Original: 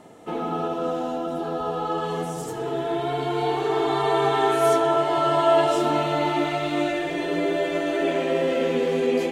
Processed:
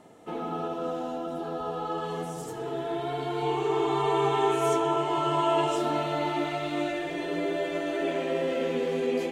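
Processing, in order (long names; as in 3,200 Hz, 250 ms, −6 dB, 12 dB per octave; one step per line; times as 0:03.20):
0:03.42–0:05.76: EQ curve with evenly spaced ripples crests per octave 0.71, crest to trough 8 dB
level −5.5 dB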